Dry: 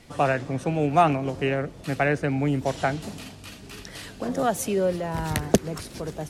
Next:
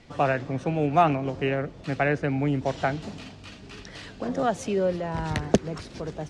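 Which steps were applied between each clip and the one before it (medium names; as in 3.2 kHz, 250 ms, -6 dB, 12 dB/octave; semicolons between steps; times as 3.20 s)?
Bessel low-pass 5.1 kHz, order 4; trim -1 dB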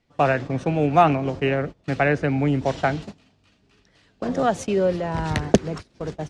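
gate -34 dBFS, range -21 dB; trim +4 dB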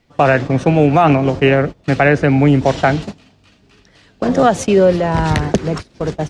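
loudness maximiser +11 dB; trim -1 dB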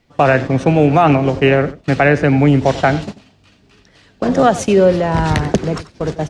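delay 91 ms -16.5 dB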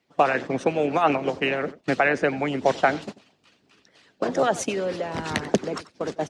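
high-pass 190 Hz 12 dB/octave; harmonic-percussive split harmonic -13 dB; trim -4 dB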